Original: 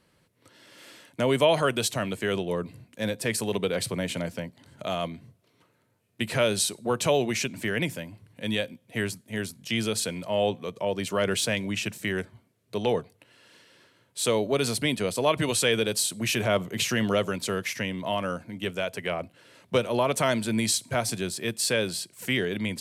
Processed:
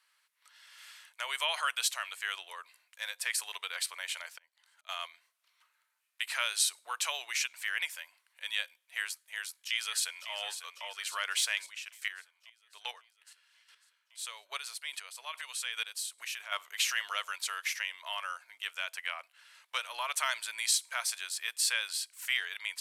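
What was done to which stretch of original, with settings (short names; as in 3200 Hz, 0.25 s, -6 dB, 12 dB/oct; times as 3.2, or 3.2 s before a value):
4.07–4.89 auto swell 0.522 s
9.19–10.29 echo throw 0.55 s, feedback 70%, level -10.5 dB
11.6–16.52 chopper 2.4 Hz, depth 65%, duty 15%
whole clip: HPF 1100 Hz 24 dB/oct; gain -2 dB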